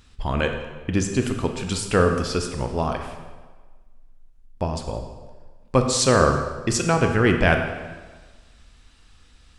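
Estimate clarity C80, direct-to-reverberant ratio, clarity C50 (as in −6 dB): 8.0 dB, 4.5 dB, 6.0 dB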